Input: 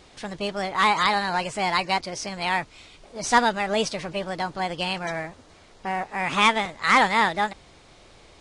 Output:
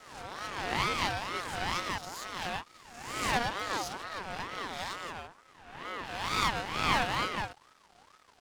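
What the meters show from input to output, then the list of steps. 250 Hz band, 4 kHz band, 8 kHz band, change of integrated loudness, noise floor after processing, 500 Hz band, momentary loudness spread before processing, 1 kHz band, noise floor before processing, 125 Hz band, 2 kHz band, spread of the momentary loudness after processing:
-11.0 dB, -7.0 dB, -7.0 dB, -9.5 dB, -62 dBFS, -11.5 dB, 12 LU, -10.5 dB, -52 dBFS, -4.5 dB, -9.5 dB, 13 LU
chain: spectral swells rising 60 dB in 1.00 s; half-wave rectifier; ring modulator with a swept carrier 1000 Hz, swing 30%, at 2.2 Hz; gain -6.5 dB

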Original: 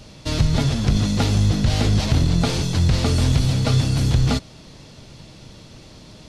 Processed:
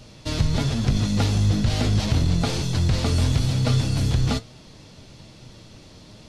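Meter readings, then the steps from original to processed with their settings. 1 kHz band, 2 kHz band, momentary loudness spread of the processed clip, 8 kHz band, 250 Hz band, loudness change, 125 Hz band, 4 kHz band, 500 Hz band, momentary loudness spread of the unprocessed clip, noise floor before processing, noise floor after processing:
-3.0 dB, -3.0 dB, 3 LU, -3.0 dB, -3.0 dB, -3.0 dB, -2.5 dB, -3.0 dB, -3.0 dB, 2 LU, -44 dBFS, -47 dBFS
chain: flange 1.1 Hz, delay 7.8 ms, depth 3.4 ms, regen +73%; gain +1.5 dB

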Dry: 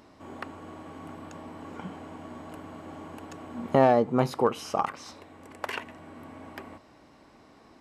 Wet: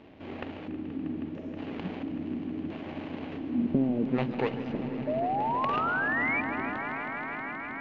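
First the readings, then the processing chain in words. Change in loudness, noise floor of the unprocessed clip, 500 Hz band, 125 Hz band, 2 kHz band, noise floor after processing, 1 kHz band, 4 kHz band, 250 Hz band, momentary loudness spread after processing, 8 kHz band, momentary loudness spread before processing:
-3.5 dB, -56 dBFS, -6.0 dB, -1.0 dB, +9.5 dB, -41 dBFS, -0.5 dB, -3.0 dB, +3.5 dB, 11 LU, under -20 dB, 22 LU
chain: median filter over 41 samples; spectral gain 1.27–1.57, 650–5100 Hz -26 dB; low shelf 160 Hz -3 dB; compressor 2.5:1, threshold -35 dBFS, peak gain reduction 11.5 dB; LFO low-pass square 0.74 Hz 290–3000 Hz; painted sound rise, 5.07–6.41, 590–2400 Hz -35 dBFS; swelling echo 0.159 s, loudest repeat 5, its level -14.5 dB; downsampling 16000 Hz; warbling echo 0.143 s, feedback 74%, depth 126 cents, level -13.5 dB; gain +5.5 dB

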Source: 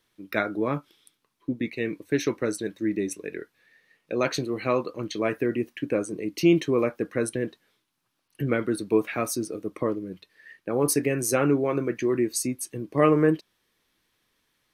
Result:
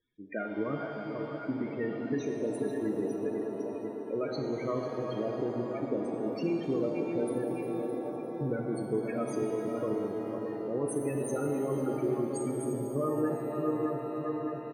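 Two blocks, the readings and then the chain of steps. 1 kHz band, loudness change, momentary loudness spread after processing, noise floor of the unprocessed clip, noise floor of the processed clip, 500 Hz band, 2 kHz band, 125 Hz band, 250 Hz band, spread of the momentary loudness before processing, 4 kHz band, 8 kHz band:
-6.0 dB, -6.5 dB, 5 LU, -75 dBFS, -39 dBFS, -5.0 dB, -12.0 dB, -6.0 dB, -5.5 dB, 11 LU, -14.5 dB, -14.5 dB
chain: regenerating reverse delay 0.306 s, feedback 76%, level -9 dB; compressor, threshold -23 dBFS, peak gain reduction 9.5 dB; on a send: feedback echo 0.497 s, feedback 55%, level -8.5 dB; on the sum: loudest bins only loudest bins 16; shimmer reverb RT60 2.9 s, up +7 st, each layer -8 dB, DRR 3.5 dB; gain -5 dB

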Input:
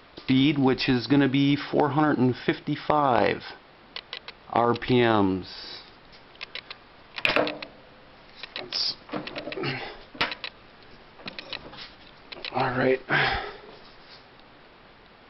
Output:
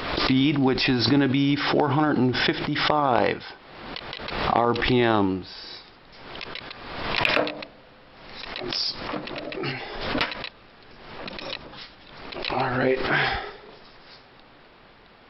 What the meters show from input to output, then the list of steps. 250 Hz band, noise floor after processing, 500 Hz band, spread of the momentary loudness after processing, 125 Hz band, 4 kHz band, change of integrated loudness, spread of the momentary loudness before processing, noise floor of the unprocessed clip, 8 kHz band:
+0.5 dB, -51 dBFS, +1.0 dB, 18 LU, +1.5 dB, +3.5 dB, +1.0 dB, 19 LU, -52 dBFS, n/a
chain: backwards sustainer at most 46 dB/s

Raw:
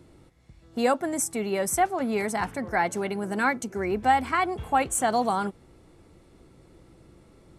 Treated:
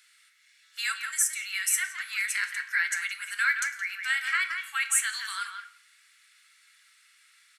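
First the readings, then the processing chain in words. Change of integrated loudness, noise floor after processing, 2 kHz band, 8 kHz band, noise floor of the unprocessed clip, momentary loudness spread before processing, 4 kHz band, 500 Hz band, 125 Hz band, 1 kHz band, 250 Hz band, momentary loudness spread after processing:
-1.5 dB, -62 dBFS, +5.0 dB, +4.0 dB, -56 dBFS, 7 LU, +6.0 dB, under -40 dB, under -40 dB, -14.5 dB, under -40 dB, 8 LU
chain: steep high-pass 1500 Hz 48 dB/oct; in parallel at -1 dB: compressor 8:1, threshold -40 dBFS, peak gain reduction 16 dB; on the sum: speakerphone echo 0.17 s, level -6 dB; shoebox room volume 110 m³, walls mixed, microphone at 0.33 m; gain +2 dB

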